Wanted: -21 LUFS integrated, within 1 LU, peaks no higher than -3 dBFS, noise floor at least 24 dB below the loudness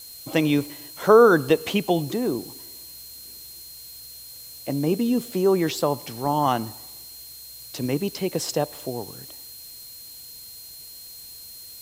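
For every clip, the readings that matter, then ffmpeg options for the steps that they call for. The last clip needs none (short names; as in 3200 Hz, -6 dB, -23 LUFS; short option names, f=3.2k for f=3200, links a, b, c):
steady tone 4200 Hz; tone level -44 dBFS; noise floor -42 dBFS; noise floor target -47 dBFS; loudness -22.5 LUFS; peak -3.0 dBFS; loudness target -21.0 LUFS
-> -af "bandreject=f=4.2k:w=30"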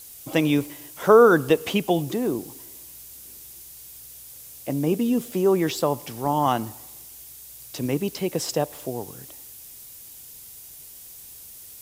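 steady tone none; noise floor -44 dBFS; noise floor target -47 dBFS
-> -af "afftdn=nr=6:nf=-44"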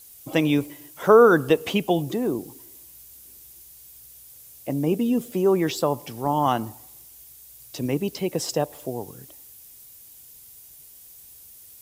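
noise floor -48 dBFS; loudness -23.0 LUFS; peak -3.0 dBFS; loudness target -21.0 LUFS
-> -af "volume=2dB,alimiter=limit=-3dB:level=0:latency=1"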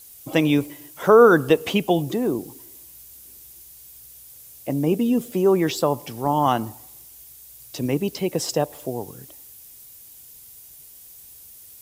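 loudness -21.0 LUFS; peak -3.0 dBFS; noise floor -46 dBFS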